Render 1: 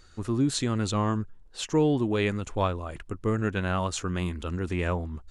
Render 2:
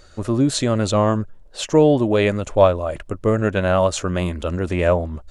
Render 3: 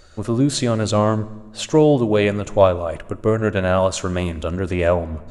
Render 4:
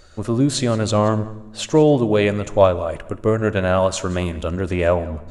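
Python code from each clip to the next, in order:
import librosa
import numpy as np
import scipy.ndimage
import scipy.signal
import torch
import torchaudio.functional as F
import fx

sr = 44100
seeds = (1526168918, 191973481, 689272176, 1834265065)

y1 = fx.peak_eq(x, sr, hz=590.0, db=13.5, octaves=0.42)
y1 = F.gain(torch.from_numpy(y1), 6.5).numpy()
y2 = fx.rev_fdn(y1, sr, rt60_s=1.3, lf_ratio=1.4, hf_ratio=0.8, size_ms=41.0, drr_db=15.5)
y3 = y2 + 10.0 ** (-20.0 / 20.0) * np.pad(y2, (int(176 * sr / 1000.0), 0))[:len(y2)]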